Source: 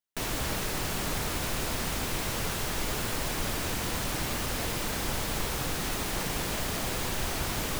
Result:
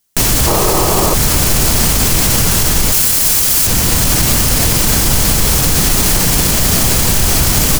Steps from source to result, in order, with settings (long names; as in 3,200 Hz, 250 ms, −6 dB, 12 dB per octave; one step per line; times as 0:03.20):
0:00.47–0:01.14: gain on a spectral selection 320–1,300 Hz +11 dB
0:02.92–0:03.67: spectral tilt +2.5 dB per octave
speech leveller 0.5 s
bass and treble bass +8 dB, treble +10 dB
notch filter 3,700 Hz, Q 27
single-tap delay 840 ms −13 dB
boost into a limiter +17 dB
level −1 dB